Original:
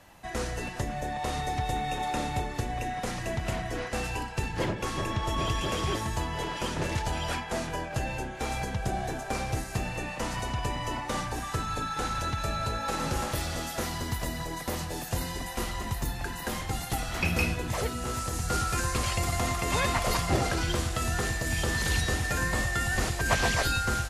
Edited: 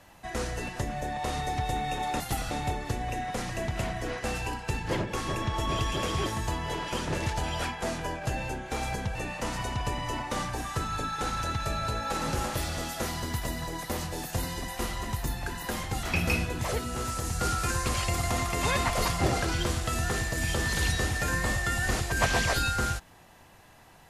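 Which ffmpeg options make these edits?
-filter_complex "[0:a]asplit=5[s0][s1][s2][s3][s4];[s0]atrim=end=2.202[s5];[s1]atrim=start=16.808:end=17.122[s6];[s2]atrim=start=2.198:end=8.842[s7];[s3]atrim=start=9.928:end=16.812[s8];[s4]atrim=start=17.118[s9];[s5][s6]acrossfade=d=0.004:c1=hsin:c2=hsin[s10];[s10][s7]acrossfade=d=0.004:c1=hsin:c2=hsin[s11];[s11][s8]acrossfade=d=0.004:c1=hsin:c2=hsin[s12];[s12][s9]acrossfade=d=0.004:c1=hsin:c2=hsin"

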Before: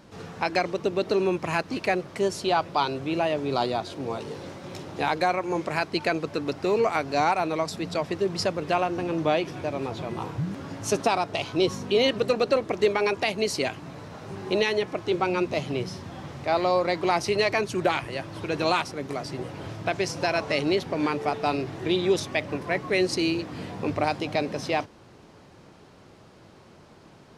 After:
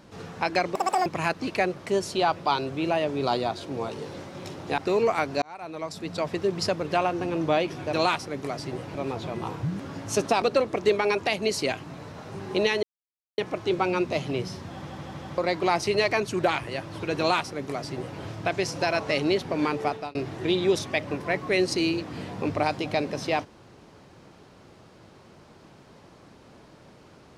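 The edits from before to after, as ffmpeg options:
-filter_complex "[0:a]asplit=14[s0][s1][s2][s3][s4][s5][s6][s7][s8][s9][s10][s11][s12][s13];[s0]atrim=end=0.754[s14];[s1]atrim=start=0.75:end=1.35,asetpts=PTS-STARTPTS,asetrate=85554,aresample=44100,atrim=end_sample=13639,asetpts=PTS-STARTPTS[s15];[s2]atrim=start=1.346:end=5.072[s16];[s3]atrim=start=6.548:end=7.19,asetpts=PTS-STARTPTS,afade=t=out:st=0.638:d=0.004:c=hsin[s17];[s4]atrim=start=7.19:end=9.702,asetpts=PTS-STARTPTS,afade=t=in:d=0.89[s18];[s5]atrim=start=18.588:end=19.612[s19];[s6]atrim=start=9.698:end=11.172[s20];[s7]atrim=start=12.378:end=14.79,asetpts=PTS-STARTPTS,afade=t=out:st=2.408:d=0.004:c=hsin,apad=pad_dur=0.55[s21];[s8]atrim=start=14.79:end=16.312,asetpts=PTS-STARTPTS,afade=t=in:d=0.004:c=hsin[s22];[s9]atrim=start=16.148:end=16.312[s23];[s10]atrim=start=16.148:end=16.312[s24];[s11]atrim=start=16.148:end=16.312[s25];[s12]atrim=start=16.788:end=21.56,asetpts=PTS-STARTPTS,afade=t=out:st=4.492:d=0.28[s26];[s13]atrim=start=21.56,asetpts=PTS-STARTPTS,afade=t=in:d=0.004:c=hsin[s27];[s14][s15]acrossfade=d=0.004:c1=hsin:c2=hsin[s28];[s28][s16]acrossfade=d=0.004:c1=hsin:c2=hsin[s29];[s17][s18]concat=n=2:v=0:a=1[s30];[s29][s30]acrossfade=d=0.004:c1=hsin:c2=hsin[s31];[s31][s19]acrossfade=d=0.004:c1=hsin:c2=hsin[s32];[s32][s20]acrossfade=d=0.004:c1=hsin:c2=hsin[s33];[s21][s22]concat=n=2:v=0:a=1[s34];[s33][s34]acrossfade=d=0.004:c1=hsin:c2=hsin[s35];[s35][s23]acrossfade=d=0.004:c1=hsin:c2=hsin[s36];[s36][s24]acrossfade=d=0.004:c1=hsin:c2=hsin[s37];[s37][s25]acrossfade=d=0.004:c1=hsin:c2=hsin[s38];[s26][s27]concat=n=2:v=0:a=1[s39];[s38][s39]acrossfade=d=0.004:c1=hsin:c2=hsin"

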